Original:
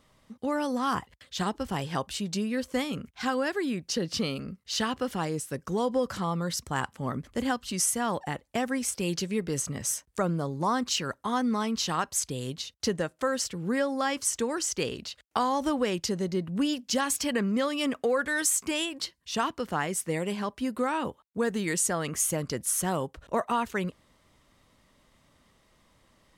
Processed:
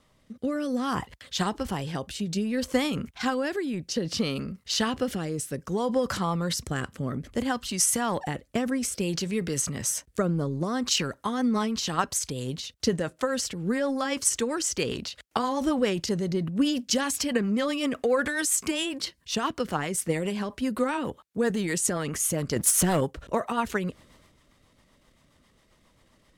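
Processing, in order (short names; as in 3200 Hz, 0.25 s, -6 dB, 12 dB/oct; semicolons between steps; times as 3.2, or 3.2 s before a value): rotary speaker horn 0.6 Hz, later 7.5 Hz, at 10.7; 22.56–23.01 sample leveller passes 2; transient shaper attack +4 dB, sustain +8 dB; gain +2 dB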